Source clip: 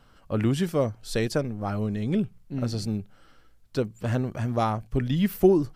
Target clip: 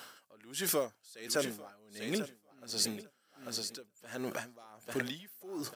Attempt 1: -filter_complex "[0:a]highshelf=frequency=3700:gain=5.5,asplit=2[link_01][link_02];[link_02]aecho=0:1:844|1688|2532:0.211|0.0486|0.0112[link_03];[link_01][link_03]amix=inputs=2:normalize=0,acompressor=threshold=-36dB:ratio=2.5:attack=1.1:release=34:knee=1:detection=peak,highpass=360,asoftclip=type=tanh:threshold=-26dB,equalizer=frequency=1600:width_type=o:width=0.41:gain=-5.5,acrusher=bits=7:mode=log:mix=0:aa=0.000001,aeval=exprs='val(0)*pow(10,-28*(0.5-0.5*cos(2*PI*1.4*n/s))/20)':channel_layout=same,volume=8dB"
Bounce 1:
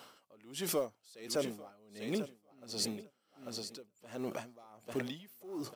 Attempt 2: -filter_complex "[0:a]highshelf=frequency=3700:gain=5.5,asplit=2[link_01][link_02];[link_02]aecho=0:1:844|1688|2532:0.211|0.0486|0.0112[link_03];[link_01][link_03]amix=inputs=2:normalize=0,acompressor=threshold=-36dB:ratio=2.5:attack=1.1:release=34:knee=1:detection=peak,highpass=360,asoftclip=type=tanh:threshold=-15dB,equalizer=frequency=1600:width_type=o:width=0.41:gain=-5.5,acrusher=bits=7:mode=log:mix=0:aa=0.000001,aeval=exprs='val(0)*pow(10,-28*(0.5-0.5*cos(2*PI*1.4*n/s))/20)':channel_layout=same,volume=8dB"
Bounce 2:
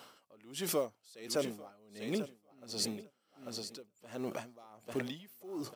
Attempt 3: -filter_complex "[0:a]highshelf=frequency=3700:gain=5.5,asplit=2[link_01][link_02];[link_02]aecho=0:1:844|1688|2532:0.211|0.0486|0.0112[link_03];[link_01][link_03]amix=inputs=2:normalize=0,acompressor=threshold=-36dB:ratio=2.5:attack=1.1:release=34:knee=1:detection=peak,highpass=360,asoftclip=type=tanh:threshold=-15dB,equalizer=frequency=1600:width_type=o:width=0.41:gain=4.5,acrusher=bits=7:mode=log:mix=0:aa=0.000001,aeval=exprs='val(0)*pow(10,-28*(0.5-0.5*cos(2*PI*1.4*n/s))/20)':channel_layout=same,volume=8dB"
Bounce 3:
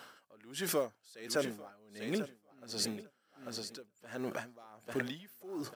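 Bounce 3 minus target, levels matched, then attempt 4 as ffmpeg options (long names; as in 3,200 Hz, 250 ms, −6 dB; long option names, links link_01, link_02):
8,000 Hz band −3.0 dB
-filter_complex "[0:a]highshelf=frequency=3700:gain=15,asplit=2[link_01][link_02];[link_02]aecho=0:1:844|1688|2532:0.211|0.0486|0.0112[link_03];[link_01][link_03]amix=inputs=2:normalize=0,acompressor=threshold=-36dB:ratio=2.5:attack=1.1:release=34:knee=1:detection=peak,highpass=360,asoftclip=type=tanh:threshold=-15dB,equalizer=frequency=1600:width_type=o:width=0.41:gain=4.5,acrusher=bits=7:mode=log:mix=0:aa=0.000001,aeval=exprs='val(0)*pow(10,-28*(0.5-0.5*cos(2*PI*1.4*n/s))/20)':channel_layout=same,volume=8dB"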